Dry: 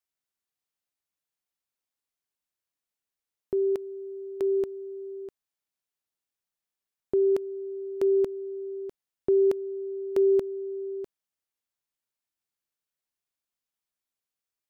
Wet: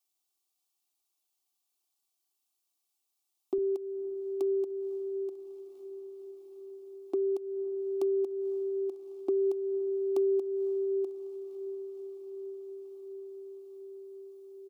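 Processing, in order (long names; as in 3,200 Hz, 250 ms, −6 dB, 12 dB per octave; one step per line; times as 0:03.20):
high-pass filter 140 Hz 12 dB per octave, from 0:03.58 310 Hz
parametric band 400 Hz +7.5 dB 0.61 octaves
comb filter 2.6 ms, depth 76%
downward compressor 4 to 1, threshold −19 dBFS, peak gain reduction 9 dB
phaser with its sweep stopped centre 460 Hz, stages 6
feedback delay with all-pass diffusion 544 ms, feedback 74%, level −16 dB
one half of a high-frequency compander encoder only
level −3 dB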